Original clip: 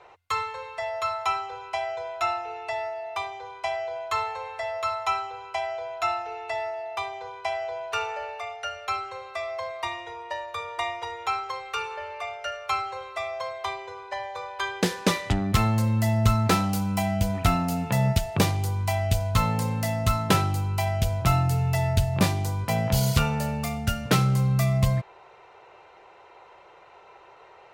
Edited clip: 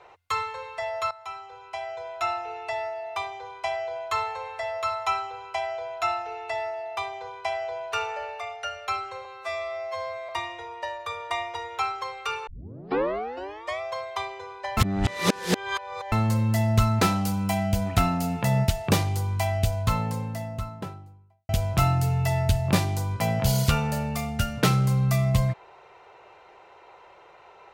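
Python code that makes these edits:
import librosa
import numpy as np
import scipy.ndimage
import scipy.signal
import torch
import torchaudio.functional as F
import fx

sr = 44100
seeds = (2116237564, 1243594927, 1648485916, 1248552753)

y = fx.studio_fade_out(x, sr, start_s=18.86, length_s=2.11)
y = fx.edit(y, sr, fx.fade_in_from(start_s=1.11, length_s=1.36, floor_db=-16.5),
    fx.stretch_span(start_s=9.25, length_s=0.52, factor=2.0),
    fx.tape_start(start_s=11.95, length_s=1.34),
    fx.reverse_span(start_s=14.25, length_s=1.35), tone=tone)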